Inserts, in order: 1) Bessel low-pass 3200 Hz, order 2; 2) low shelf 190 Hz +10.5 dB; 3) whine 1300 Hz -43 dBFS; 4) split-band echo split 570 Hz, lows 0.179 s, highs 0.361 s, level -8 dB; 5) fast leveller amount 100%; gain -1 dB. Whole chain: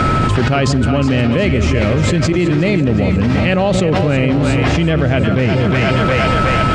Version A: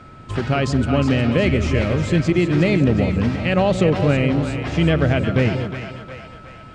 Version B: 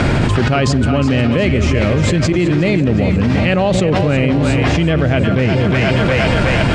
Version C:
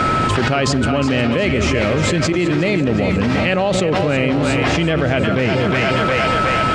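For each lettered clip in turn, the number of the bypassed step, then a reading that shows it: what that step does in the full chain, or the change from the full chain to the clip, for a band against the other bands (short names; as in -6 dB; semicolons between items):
5, crest factor change +3.5 dB; 3, 1 kHz band -3.0 dB; 2, 125 Hz band -6.0 dB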